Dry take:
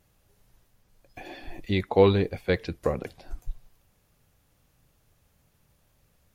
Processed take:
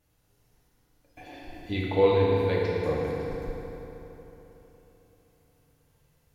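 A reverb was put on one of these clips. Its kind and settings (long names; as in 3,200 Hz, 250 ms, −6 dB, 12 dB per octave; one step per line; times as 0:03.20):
feedback delay network reverb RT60 3.7 s, high-frequency decay 0.7×, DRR −5.5 dB
level −7.5 dB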